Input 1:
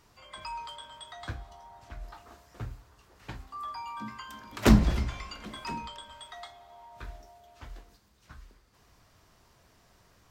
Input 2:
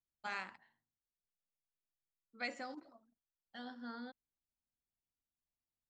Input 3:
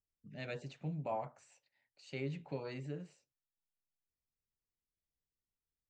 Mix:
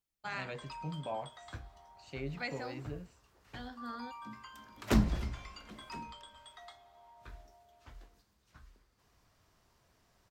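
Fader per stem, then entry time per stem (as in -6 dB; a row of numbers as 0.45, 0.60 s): -8.0, +1.5, -0.5 dB; 0.25, 0.00, 0.00 s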